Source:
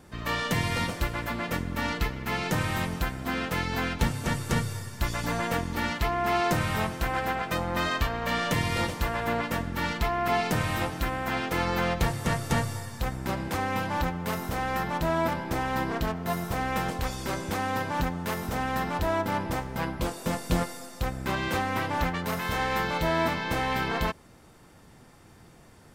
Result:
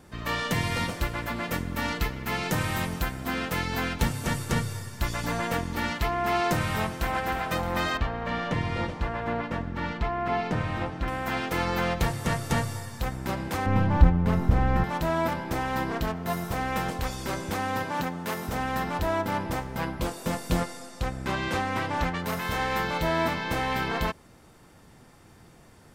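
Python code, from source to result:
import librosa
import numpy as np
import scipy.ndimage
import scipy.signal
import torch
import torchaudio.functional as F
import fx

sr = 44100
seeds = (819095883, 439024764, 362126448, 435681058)

y = fx.high_shelf(x, sr, hz=8100.0, db=5.0, at=(1.36, 4.45))
y = fx.echo_throw(y, sr, start_s=6.72, length_s=0.58, ms=310, feedback_pct=75, wet_db=-11.0)
y = fx.spacing_loss(y, sr, db_at_10k=21, at=(7.97, 11.08))
y = fx.riaa(y, sr, side='playback', at=(13.66, 14.84))
y = fx.highpass(y, sr, hz=150.0, slope=12, at=(17.84, 18.48))
y = fx.lowpass(y, sr, hz=9900.0, slope=12, at=(20.61, 22.2))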